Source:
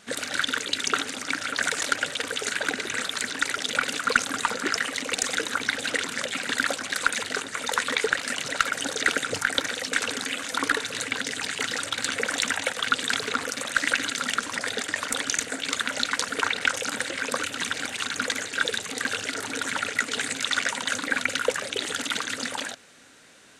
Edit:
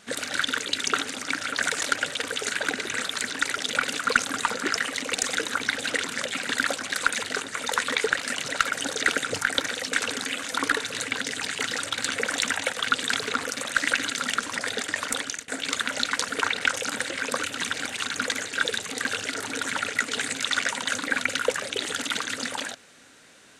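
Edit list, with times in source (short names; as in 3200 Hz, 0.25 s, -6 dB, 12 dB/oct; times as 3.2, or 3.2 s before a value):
15.14–15.48 fade out, to -21.5 dB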